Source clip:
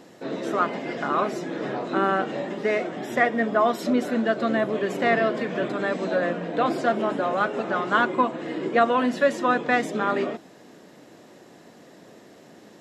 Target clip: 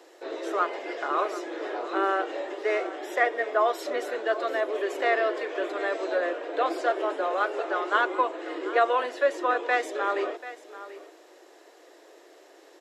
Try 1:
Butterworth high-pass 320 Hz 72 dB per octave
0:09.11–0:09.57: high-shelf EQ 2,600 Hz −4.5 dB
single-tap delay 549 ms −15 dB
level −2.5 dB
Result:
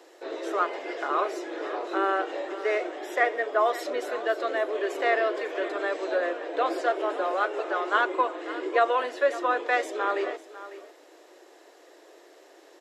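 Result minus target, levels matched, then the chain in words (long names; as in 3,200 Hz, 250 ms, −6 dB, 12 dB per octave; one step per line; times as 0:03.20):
echo 188 ms early
Butterworth high-pass 320 Hz 72 dB per octave
0:09.11–0:09.57: high-shelf EQ 2,600 Hz −4.5 dB
single-tap delay 737 ms −15 dB
level −2.5 dB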